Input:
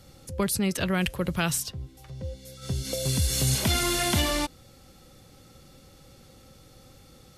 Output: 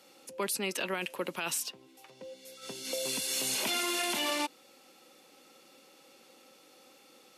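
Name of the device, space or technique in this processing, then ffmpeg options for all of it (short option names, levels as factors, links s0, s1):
laptop speaker: -af "highpass=f=270:w=0.5412,highpass=f=270:w=1.3066,equalizer=f=940:t=o:w=0.32:g=5.5,equalizer=f=2600:t=o:w=0.4:g=7.5,alimiter=limit=0.112:level=0:latency=1:release=17,volume=0.668"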